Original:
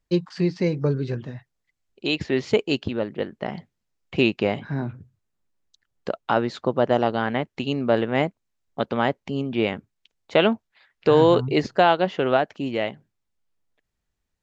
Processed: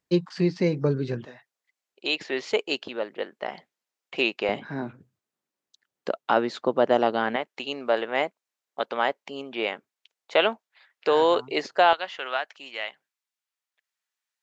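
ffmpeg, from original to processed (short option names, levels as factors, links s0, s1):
-af "asetnsamples=n=441:p=0,asendcmd='1.25 highpass f 510;4.49 highpass f 250;7.36 highpass f 540;11.93 highpass f 1200',highpass=140"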